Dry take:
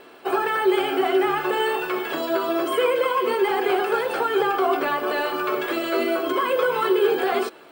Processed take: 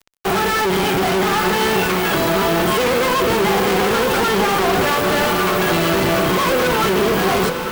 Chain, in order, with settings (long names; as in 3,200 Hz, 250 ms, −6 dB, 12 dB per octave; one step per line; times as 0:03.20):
sub-octave generator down 1 octave, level +2 dB
fuzz pedal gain 40 dB, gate −37 dBFS
feedback delay with all-pass diffusion 913 ms, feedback 41%, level −7 dB
level −3 dB